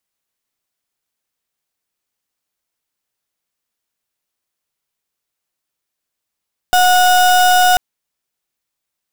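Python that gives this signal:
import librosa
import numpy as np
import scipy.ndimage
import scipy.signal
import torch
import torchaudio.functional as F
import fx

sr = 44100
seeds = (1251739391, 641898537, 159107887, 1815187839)

y = fx.pulse(sr, length_s=1.04, hz=729.0, level_db=-10.5, duty_pct=34)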